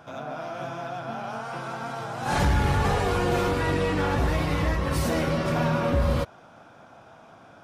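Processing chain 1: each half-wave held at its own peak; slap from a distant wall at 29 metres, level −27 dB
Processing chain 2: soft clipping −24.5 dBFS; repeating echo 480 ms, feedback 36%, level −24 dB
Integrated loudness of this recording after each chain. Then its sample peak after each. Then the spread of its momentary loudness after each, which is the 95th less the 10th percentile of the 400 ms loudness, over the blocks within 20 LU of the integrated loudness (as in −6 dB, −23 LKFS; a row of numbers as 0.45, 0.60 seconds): −22.0, −30.5 LKFS; −14.5, −24.0 dBFS; 10, 21 LU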